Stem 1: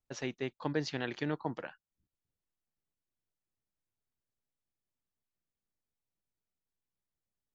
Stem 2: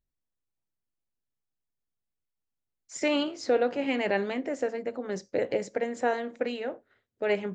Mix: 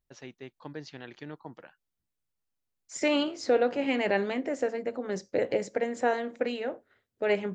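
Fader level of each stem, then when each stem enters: −7.5, +0.5 decibels; 0.00, 0.00 seconds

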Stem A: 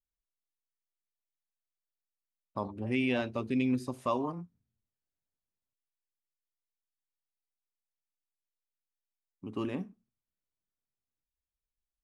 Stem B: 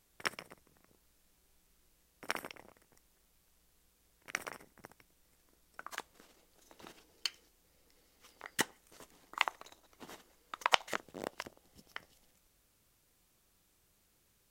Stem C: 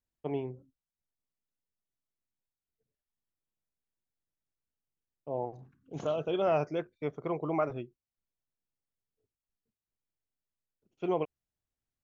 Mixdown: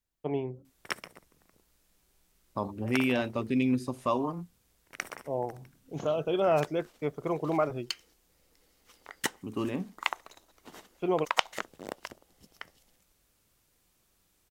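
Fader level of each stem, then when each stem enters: +2.5, +1.5, +2.5 decibels; 0.00, 0.65, 0.00 seconds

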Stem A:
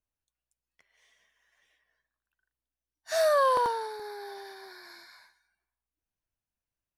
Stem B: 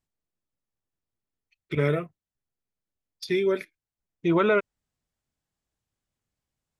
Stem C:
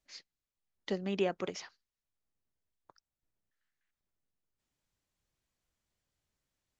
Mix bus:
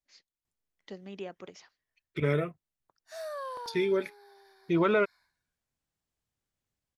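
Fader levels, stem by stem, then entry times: −15.0, −3.5, −9.0 decibels; 0.00, 0.45, 0.00 seconds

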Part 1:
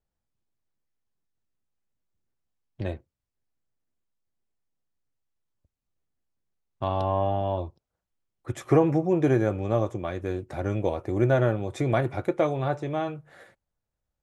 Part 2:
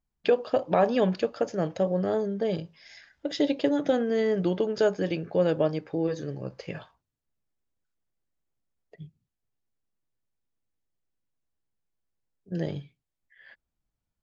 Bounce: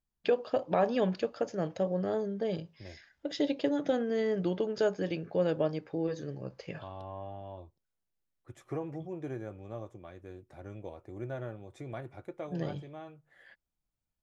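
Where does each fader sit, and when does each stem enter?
−17.0, −5.0 decibels; 0.00, 0.00 seconds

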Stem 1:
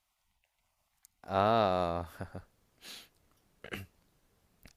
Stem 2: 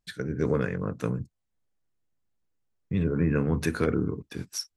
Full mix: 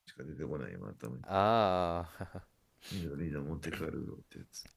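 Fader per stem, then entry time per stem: −1.0, −14.0 decibels; 0.00, 0.00 seconds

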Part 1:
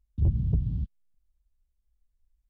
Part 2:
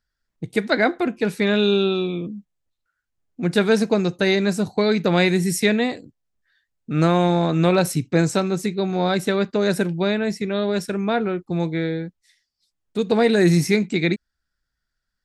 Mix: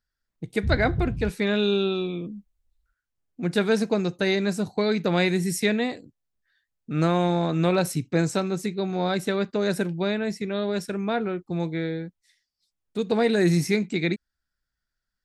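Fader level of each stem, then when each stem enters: −1.5, −4.5 decibels; 0.45, 0.00 seconds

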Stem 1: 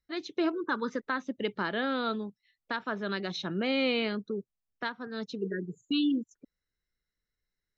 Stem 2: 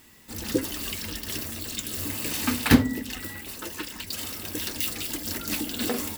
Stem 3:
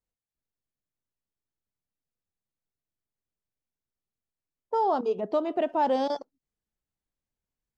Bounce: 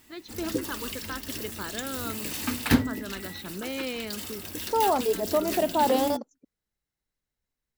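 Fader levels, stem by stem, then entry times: −5.5, −4.0, +1.5 decibels; 0.00, 0.00, 0.00 seconds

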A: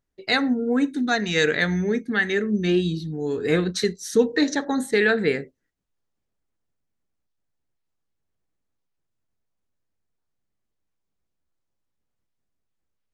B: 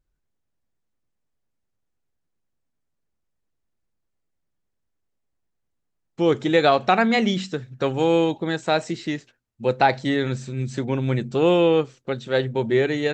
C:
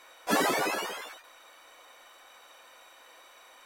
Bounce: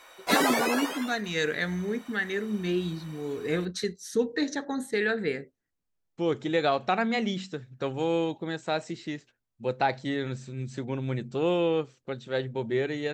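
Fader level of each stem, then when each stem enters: −7.5, −8.0, +2.0 decibels; 0.00, 0.00, 0.00 seconds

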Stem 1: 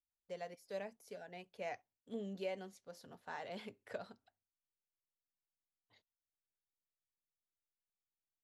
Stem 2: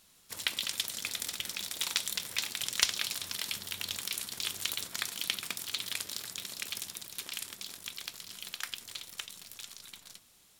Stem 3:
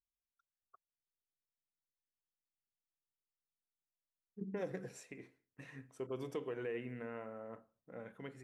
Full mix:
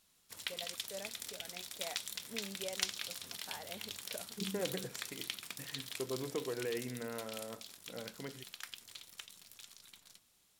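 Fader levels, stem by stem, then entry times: −3.0, −8.5, +2.5 decibels; 0.20, 0.00, 0.00 seconds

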